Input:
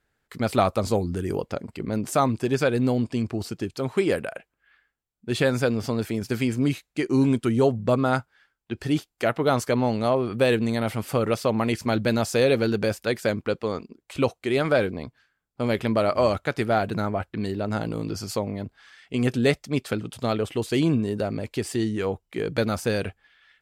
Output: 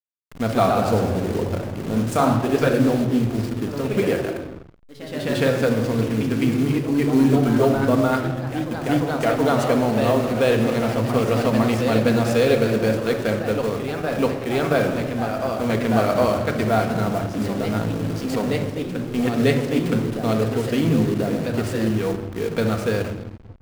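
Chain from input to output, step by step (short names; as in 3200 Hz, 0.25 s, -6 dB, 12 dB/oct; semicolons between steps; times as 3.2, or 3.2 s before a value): requantised 6-bit, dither none; shoebox room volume 2000 m³, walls mixed, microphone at 1.7 m; backlash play -27 dBFS; echoes that change speed 0.15 s, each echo +1 st, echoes 3, each echo -6 dB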